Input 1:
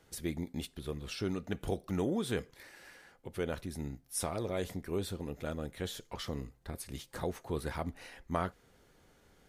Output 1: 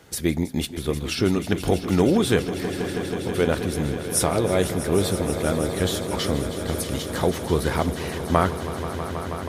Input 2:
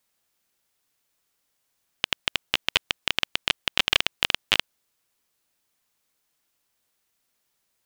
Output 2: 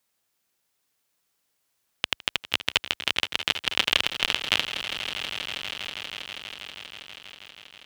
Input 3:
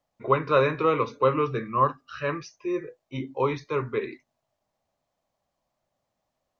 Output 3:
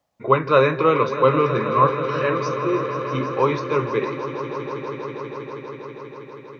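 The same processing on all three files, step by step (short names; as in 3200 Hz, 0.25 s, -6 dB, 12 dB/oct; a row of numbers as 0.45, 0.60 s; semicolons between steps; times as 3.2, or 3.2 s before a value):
HPF 51 Hz; on a send: swelling echo 0.161 s, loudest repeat 5, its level -14 dB; on the sum: normalise peaks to -2 dBFS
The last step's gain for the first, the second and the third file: +13.5, -1.0, +5.0 dB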